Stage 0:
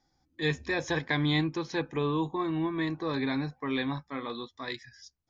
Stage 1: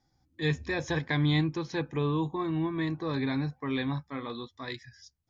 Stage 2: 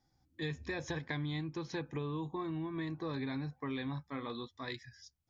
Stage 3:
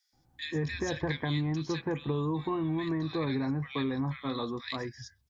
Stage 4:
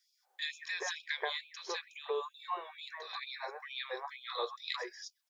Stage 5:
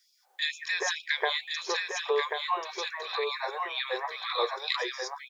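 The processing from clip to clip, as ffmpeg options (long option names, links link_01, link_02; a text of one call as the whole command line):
ffmpeg -i in.wav -af "equalizer=frequency=98:width=0.77:gain=8.5,volume=-2dB" out.wav
ffmpeg -i in.wav -af "acompressor=threshold=-32dB:ratio=6,volume=-3dB" out.wav
ffmpeg -i in.wav -filter_complex "[0:a]acrossover=split=1700[link_01][link_02];[link_01]adelay=130[link_03];[link_03][link_02]amix=inputs=2:normalize=0,volume=7.5dB" out.wav
ffmpeg -i in.wav -af "afftfilt=real='re*gte(b*sr/1024,350*pow(2400/350,0.5+0.5*sin(2*PI*2.2*pts/sr)))':imag='im*gte(b*sr/1024,350*pow(2400/350,0.5+0.5*sin(2*PI*2.2*pts/sr)))':win_size=1024:overlap=0.75,volume=1dB" out.wav
ffmpeg -i in.wav -af "aecho=1:1:1086:0.562,volume=8dB" out.wav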